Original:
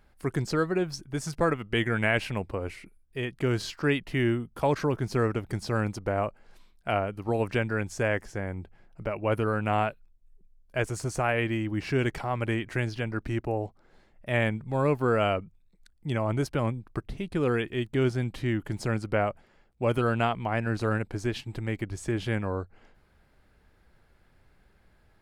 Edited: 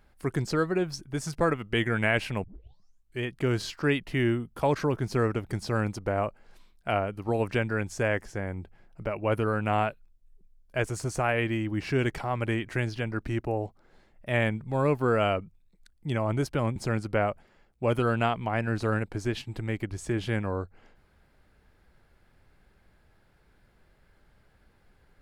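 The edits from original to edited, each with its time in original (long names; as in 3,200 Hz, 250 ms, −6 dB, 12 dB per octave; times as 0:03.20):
0:02.44: tape start 0.79 s
0:16.76–0:18.75: remove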